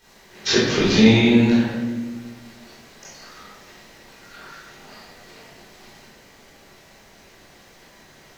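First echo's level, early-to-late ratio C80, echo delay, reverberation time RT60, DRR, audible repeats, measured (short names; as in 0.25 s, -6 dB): none, 1.5 dB, none, 1.3 s, -11.0 dB, none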